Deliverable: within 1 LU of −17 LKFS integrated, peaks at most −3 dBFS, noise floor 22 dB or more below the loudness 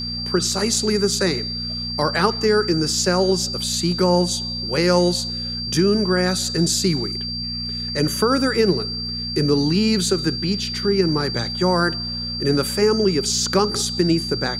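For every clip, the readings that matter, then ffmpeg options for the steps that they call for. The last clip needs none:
mains hum 60 Hz; hum harmonics up to 240 Hz; level of the hum −29 dBFS; interfering tone 4,700 Hz; level of the tone −26 dBFS; integrated loudness −20.0 LKFS; sample peak −2.5 dBFS; target loudness −17.0 LKFS
→ -af "bandreject=frequency=60:width_type=h:width=4,bandreject=frequency=120:width_type=h:width=4,bandreject=frequency=180:width_type=h:width=4,bandreject=frequency=240:width_type=h:width=4"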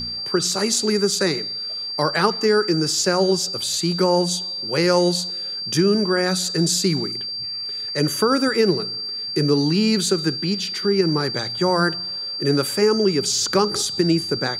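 mains hum none found; interfering tone 4,700 Hz; level of the tone −26 dBFS
→ -af "bandreject=frequency=4700:width=30"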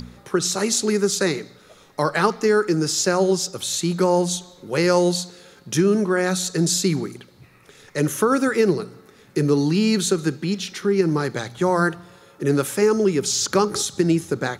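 interfering tone none found; integrated loudness −21.0 LKFS; sample peak −3.0 dBFS; target loudness −17.0 LKFS
→ -af "volume=4dB,alimiter=limit=-3dB:level=0:latency=1"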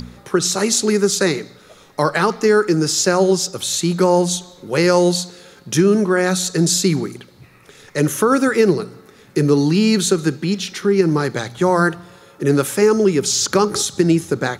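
integrated loudness −17.0 LKFS; sample peak −3.0 dBFS; background noise floor −47 dBFS

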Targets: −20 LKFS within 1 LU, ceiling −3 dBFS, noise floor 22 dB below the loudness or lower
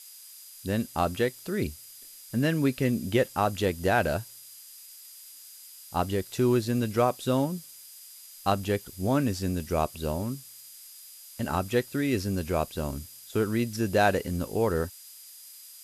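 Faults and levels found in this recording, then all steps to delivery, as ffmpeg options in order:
interfering tone 4,900 Hz; level of the tone −55 dBFS; background noise floor −48 dBFS; target noise floor −50 dBFS; integrated loudness −28.0 LKFS; sample peak −10.0 dBFS; target loudness −20.0 LKFS
→ -af "bandreject=frequency=4900:width=30"
-af "afftdn=noise_reduction=6:noise_floor=-48"
-af "volume=8dB,alimiter=limit=-3dB:level=0:latency=1"

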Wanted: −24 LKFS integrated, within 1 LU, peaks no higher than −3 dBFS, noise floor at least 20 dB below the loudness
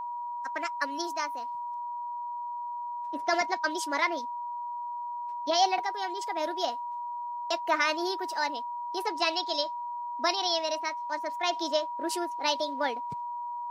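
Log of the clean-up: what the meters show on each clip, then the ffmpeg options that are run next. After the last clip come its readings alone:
interfering tone 960 Hz; level of the tone −33 dBFS; integrated loudness −31.0 LKFS; sample peak −12.5 dBFS; target loudness −24.0 LKFS
→ -af "bandreject=frequency=960:width=30"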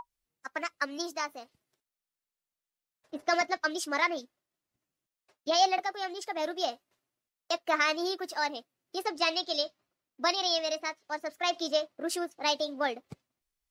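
interfering tone none found; integrated loudness −31.0 LKFS; sample peak −13.0 dBFS; target loudness −24.0 LKFS
→ -af "volume=7dB"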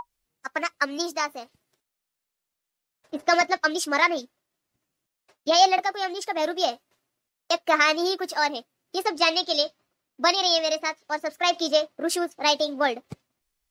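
integrated loudness −24.0 LKFS; sample peak −6.0 dBFS; background noise floor −84 dBFS

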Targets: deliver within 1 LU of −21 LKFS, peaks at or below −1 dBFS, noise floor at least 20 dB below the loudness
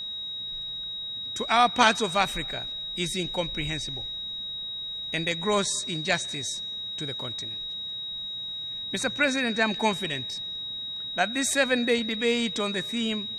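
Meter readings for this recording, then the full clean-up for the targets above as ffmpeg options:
interfering tone 3,800 Hz; level of the tone −32 dBFS; integrated loudness −27.0 LKFS; sample peak −4.5 dBFS; target loudness −21.0 LKFS
→ -af "bandreject=frequency=3800:width=30"
-af "volume=6dB,alimiter=limit=-1dB:level=0:latency=1"

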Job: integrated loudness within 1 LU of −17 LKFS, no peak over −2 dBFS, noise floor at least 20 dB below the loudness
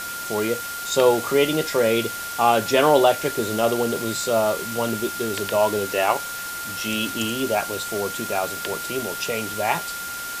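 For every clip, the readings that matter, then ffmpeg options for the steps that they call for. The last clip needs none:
interfering tone 1,400 Hz; level of the tone −31 dBFS; background noise floor −31 dBFS; target noise floor −43 dBFS; integrated loudness −22.5 LKFS; sample peak −4.0 dBFS; target loudness −17.0 LKFS
→ -af "bandreject=frequency=1400:width=30"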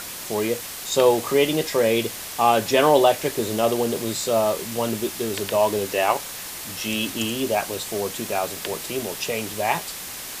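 interfering tone none found; background noise floor −35 dBFS; target noise floor −43 dBFS
→ -af "afftdn=noise_reduction=8:noise_floor=-35"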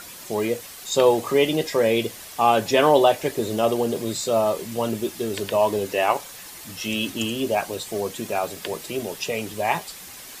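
background noise floor −41 dBFS; target noise floor −43 dBFS
→ -af "afftdn=noise_reduction=6:noise_floor=-41"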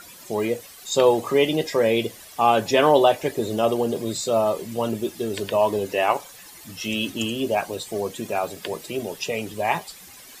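background noise floor −45 dBFS; integrated loudness −23.0 LKFS; sample peak −4.5 dBFS; target loudness −17.0 LKFS
→ -af "volume=6dB,alimiter=limit=-2dB:level=0:latency=1"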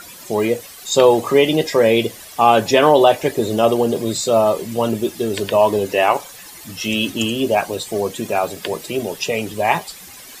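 integrated loudness −17.5 LKFS; sample peak −2.0 dBFS; background noise floor −39 dBFS

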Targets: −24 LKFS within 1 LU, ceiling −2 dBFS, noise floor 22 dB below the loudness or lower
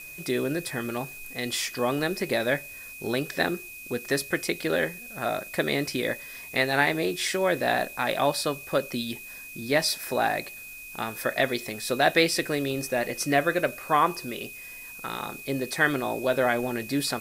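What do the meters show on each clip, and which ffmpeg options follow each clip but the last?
interfering tone 2,500 Hz; level of the tone −41 dBFS; background noise floor −42 dBFS; target noise floor −49 dBFS; integrated loudness −27.0 LKFS; sample peak −6.0 dBFS; target loudness −24.0 LKFS
→ -af "bandreject=frequency=2500:width=30"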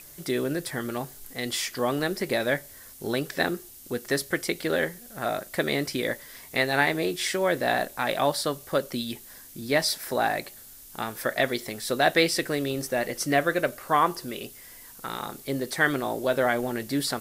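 interfering tone none found; background noise floor −47 dBFS; target noise floor −49 dBFS
→ -af "afftdn=noise_reduction=6:noise_floor=-47"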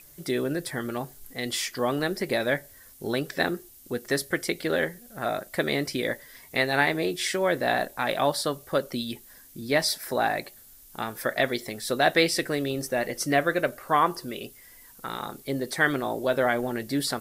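background noise floor −51 dBFS; integrated loudness −27.0 LKFS; sample peak −6.0 dBFS; target loudness −24.0 LKFS
→ -af "volume=3dB"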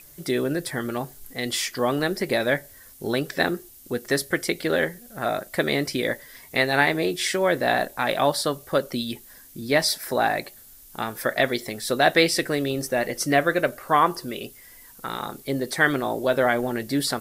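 integrated loudness −24.0 LKFS; sample peak −3.0 dBFS; background noise floor −48 dBFS

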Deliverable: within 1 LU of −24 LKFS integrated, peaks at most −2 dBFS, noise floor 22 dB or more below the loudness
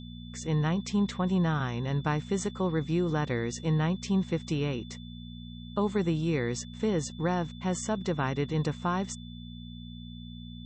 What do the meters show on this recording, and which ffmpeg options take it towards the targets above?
mains hum 60 Hz; hum harmonics up to 240 Hz; level of the hum −42 dBFS; interfering tone 3,500 Hz; level of the tone −51 dBFS; integrated loudness −30.0 LKFS; sample peak −16.0 dBFS; target loudness −24.0 LKFS
→ -af "bandreject=frequency=60:width_type=h:width=4,bandreject=frequency=120:width_type=h:width=4,bandreject=frequency=180:width_type=h:width=4,bandreject=frequency=240:width_type=h:width=4"
-af "bandreject=frequency=3500:width=30"
-af "volume=6dB"

